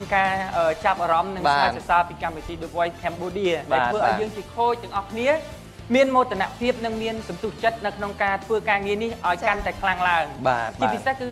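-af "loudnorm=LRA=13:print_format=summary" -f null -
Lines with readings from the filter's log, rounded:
Input Integrated:    -23.2 LUFS
Input True Peak:      -6.6 dBTP
Input LRA:             1.3 LU
Input Threshold:     -33.2 LUFS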